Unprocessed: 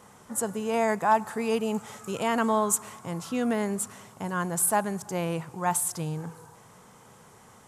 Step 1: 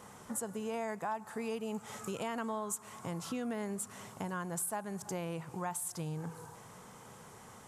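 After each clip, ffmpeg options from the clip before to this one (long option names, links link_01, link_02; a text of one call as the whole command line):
ffmpeg -i in.wav -af "acompressor=threshold=-37dB:ratio=4" out.wav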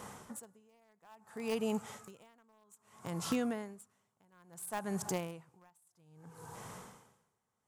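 ffmpeg -i in.wav -filter_complex "[0:a]asplit=2[link_01][link_02];[link_02]acrusher=bits=4:mix=0:aa=0.000001,volume=-9.5dB[link_03];[link_01][link_03]amix=inputs=2:normalize=0,aeval=exprs='val(0)*pow(10,-37*(0.5-0.5*cos(2*PI*0.6*n/s))/20)':channel_layout=same,volume=5dB" out.wav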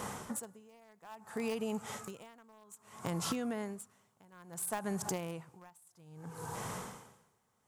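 ffmpeg -i in.wav -af "acompressor=threshold=-40dB:ratio=16,volume=7.5dB" out.wav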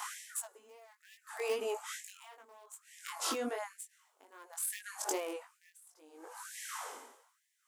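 ffmpeg -i in.wav -af "flanger=delay=19:depth=3.1:speed=2.5,afftfilt=real='re*gte(b*sr/1024,220*pow(1700/220,0.5+0.5*sin(2*PI*1.1*pts/sr)))':imag='im*gte(b*sr/1024,220*pow(1700/220,0.5+0.5*sin(2*PI*1.1*pts/sr)))':win_size=1024:overlap=0.75,volume=6dB" out.wav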